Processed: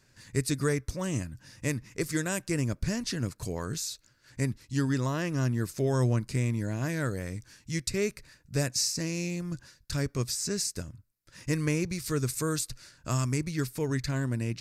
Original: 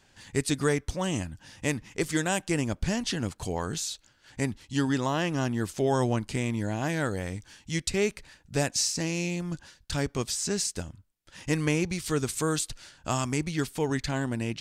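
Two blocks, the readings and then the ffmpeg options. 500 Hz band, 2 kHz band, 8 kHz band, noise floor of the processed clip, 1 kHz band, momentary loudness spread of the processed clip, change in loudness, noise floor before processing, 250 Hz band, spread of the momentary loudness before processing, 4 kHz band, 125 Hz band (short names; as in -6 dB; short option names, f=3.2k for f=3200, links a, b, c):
-3.0 dB, -3.5 dB, -1.5 dB, -66 dBFS, -6.5 dB, 8 LU, -1.5 dB, -63 dBFS, -2.0 dB, 8 LU, -3.0 dB, +2.0 dB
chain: -af "equalizer=f=125:t=o:w=0.33:g=8,equalizer=f=800:t=o:w=0.33:g=-12,equalizer=f=3.15k:t=o:w=0.33:g=-10,equalizer=f=5k:t=o:w=0.33:g=3,equalizer=f=12.5k:t=o:w=0.33:g=8,volume=-2.5dB"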